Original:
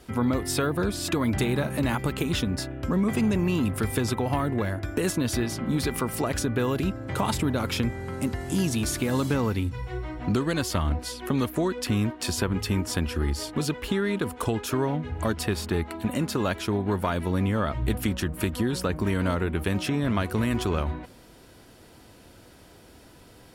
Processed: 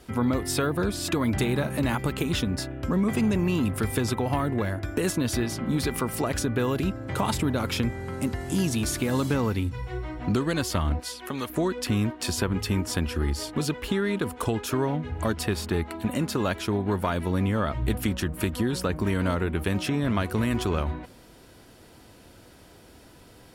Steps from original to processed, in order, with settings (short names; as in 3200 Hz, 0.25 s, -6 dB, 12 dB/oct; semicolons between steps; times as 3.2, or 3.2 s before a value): 11–11.5 low shelf 400 Hz -11.5 dB